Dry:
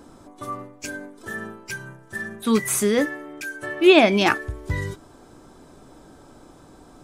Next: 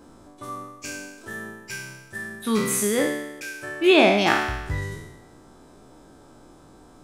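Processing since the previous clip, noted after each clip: spectral sustain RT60 0.99 s; trim -4.5 dB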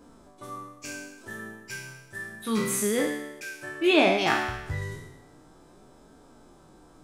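flange 0.32 Hz, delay 4.1 ms, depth 4.7 ms, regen -44%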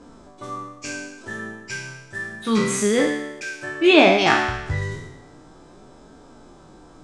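low-pass 7.9 kHz 24 dB/octave; trim +7 dB

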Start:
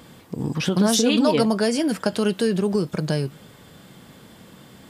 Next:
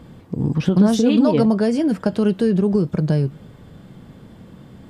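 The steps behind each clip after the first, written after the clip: tilt EQ -3 dB/octave; trim -1.5 dB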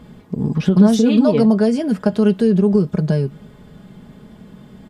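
comb 4.8 ms, depth 50%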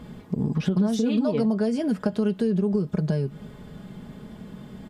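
compression 3:1, threshold -23 dBFS, peak gain reduction 12.5 dB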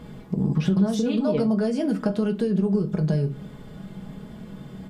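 simulated room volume 130 m³, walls furnished, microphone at 0.63 m

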